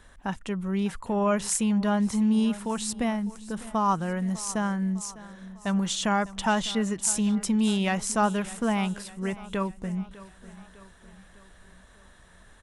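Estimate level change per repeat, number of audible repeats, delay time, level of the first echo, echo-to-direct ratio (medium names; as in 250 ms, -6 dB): -5.5 dB, 4, 602 ms, -18.0 dB, -16.5 dB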